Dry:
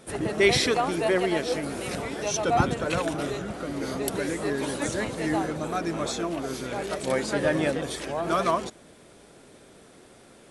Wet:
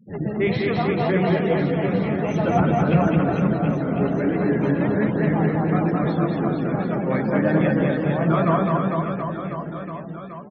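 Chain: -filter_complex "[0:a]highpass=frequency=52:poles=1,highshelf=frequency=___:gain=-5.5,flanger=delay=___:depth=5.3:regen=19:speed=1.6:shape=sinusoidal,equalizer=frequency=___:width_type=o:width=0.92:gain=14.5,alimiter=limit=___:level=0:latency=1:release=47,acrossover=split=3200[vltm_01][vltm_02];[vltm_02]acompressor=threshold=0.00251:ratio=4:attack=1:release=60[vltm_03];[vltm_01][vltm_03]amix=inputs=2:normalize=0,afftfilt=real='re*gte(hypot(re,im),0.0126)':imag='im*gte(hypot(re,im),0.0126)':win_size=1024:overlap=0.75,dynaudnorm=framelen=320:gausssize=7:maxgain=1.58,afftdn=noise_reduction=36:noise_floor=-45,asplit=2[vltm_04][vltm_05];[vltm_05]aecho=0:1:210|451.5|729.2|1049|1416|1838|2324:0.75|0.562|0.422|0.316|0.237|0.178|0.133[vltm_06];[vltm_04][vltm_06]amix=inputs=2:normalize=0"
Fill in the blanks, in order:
10k, 9.2, 170, 0.224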